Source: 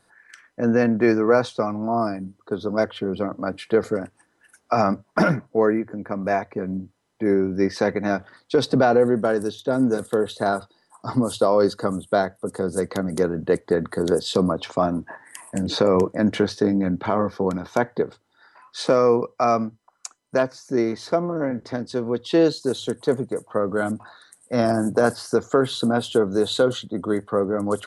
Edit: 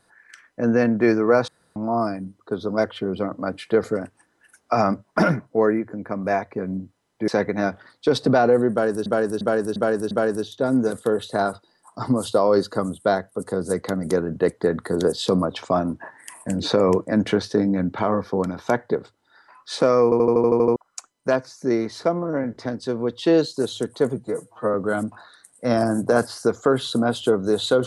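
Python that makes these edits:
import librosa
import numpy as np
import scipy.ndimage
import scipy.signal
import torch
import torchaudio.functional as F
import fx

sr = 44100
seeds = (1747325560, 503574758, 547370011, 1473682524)

y = fx.edit(x, sr, fx.room_tone_fill(start_s=1.48, length_s=0.28),
    fx.cut(start_s=7.28, length_s=0.47),
    fx.repeat(start_s=9.18, length_s=0.35, count=5),
    fx.stutter_over(start_s=19.11, slice_s=0.08, count=9),
    fx.stretch_span(start_s=23.24, length_s=0.38, factor=1.5), tone=tone)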